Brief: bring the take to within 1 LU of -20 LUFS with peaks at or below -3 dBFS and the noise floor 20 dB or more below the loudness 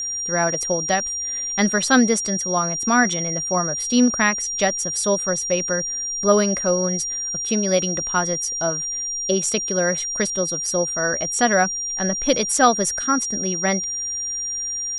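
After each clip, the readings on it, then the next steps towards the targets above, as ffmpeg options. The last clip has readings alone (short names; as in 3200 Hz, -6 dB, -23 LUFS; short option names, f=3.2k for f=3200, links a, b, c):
steady tone 5700 Hz; tone level -24 dBFS; loudness -20.0 LUFS; peak -2.0 dBFS; loudness target -20.0 LUFS
-> -af "bandreject=f=5.7k:w=30"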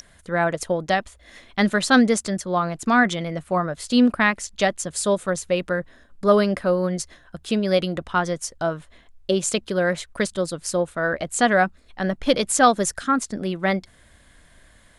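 steady tone none; loudness -22.0 LUFS; peak -2.5 dBFS; loudness target -20.0 LUFS
-> -af "volume=2dB,alimiter=limit=-3dB:level=0:latency=1"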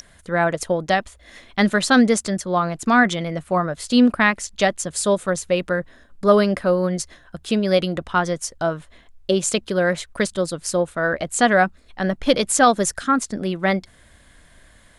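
loudness -20.5 LUFS; peak -3.0 dBFS; noise floor -52 dBFS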